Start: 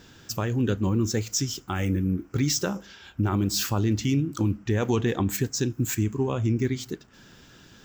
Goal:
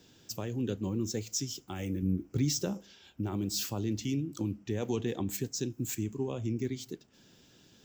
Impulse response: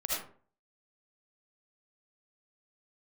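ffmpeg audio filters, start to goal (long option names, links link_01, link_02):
-filter_complex "[0:a]lowshelf=frequency=89:gain=-11,acrossover=split=120|960|2000[link_01][link_02][link_03][link_04];[link_03]acrusher=bits=2:mix=0:aa=0.5[link_05];[link_01][link_02][link_05][link_04]amix=inputs=4:normalize=0,asettb=1/sr,asplit=3[link_06][link_07][link_08];[link_06]atrim=end=2.024[link_09];[link_07]atrim=start=2.02:end=2.74,asetpts=PTS-STARTPTS,afade=type=in:duration=0.004:curve=qsin,afade=type=out:start_time=0.716:duration=0.004:curve=qsin,lowshelf=frequency=220:gain=8[link_10];[link_08]atrim=start=2.736[link_11];[link_09][link_10]acrossfade=duration=0.004:curve1=hsin:curve2=qsin[link_12];[link_12][link_11]acrossfade=duration=0.004:curve1=qsin:curve2=hsin,volume=-6.5dB"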